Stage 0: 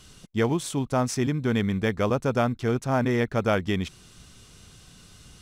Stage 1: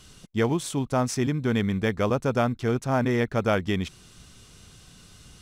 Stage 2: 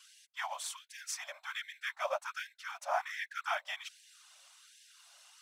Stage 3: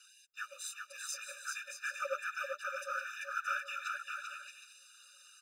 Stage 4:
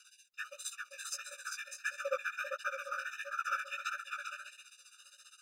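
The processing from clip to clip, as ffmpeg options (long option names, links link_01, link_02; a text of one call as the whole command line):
ffmpeg -i in.wav -af anull out.wav
ffmpeg -i in.wav -af "lowshelf=frequency=420:gain=5.5,afftfilt=real='hypot(re,im)*cos(2*PI*random(0))':imag='hypot(re,im)*sin(2*PI*random(1))':win_size=512:overlap=0.75,afftfilt=real='re*gte(b*sr/1024,540*pow(1600/540,0.5+0.5*sin(2*PI*1.3*pts/sr)))':imag='im*gte(b*sr/1024,540*pow(1600/540,0.5+0.5*sin(2*PI*1.3*pts/sr)))':win_size=1024:overlap=0.75" out.wav
ffmpeg -i in.wav -af "aecho=1:1:390|624|764.4|848.6|899.2:0.631|0.398|0.251|0.158|0.1,afftfilt=real='re*eq(mod(floor(b*sr/1024/590),2),0)':imag='im*eq(mod(floor(b*sr/1024/590),2),0)':win_size=1024:overlap=0.75,volume=1.5dB" out.wav
ffmpeg -i in.wav -af "tremolo=f=15:d=0.98,flanger=delay=15.5:depth=4.9:speed=1.5,volume=7.5dB" out.wav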